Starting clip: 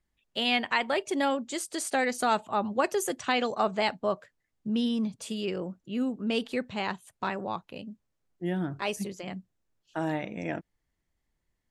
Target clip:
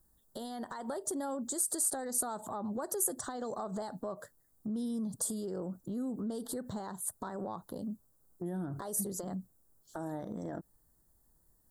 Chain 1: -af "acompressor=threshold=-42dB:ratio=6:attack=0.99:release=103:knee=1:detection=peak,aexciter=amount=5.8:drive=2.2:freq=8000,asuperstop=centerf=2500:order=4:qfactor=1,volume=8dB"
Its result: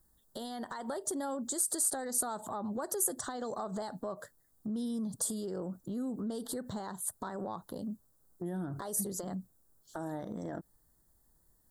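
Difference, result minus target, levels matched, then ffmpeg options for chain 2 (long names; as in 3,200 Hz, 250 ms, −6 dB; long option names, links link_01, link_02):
4,000 Hz band +2.5 dB
-af "acompressor=threshold=-42dB:ratio=6:attack=0.99:release=103:knee=1:detection=peak,aexciter=amount=5.8:drive=2.2:freq=8000,asuperstop=centerf=2500:order=4:qfactor=1,equalizer=frequency=2900:width_type=o:width=2:gain=-4,volume=8dB"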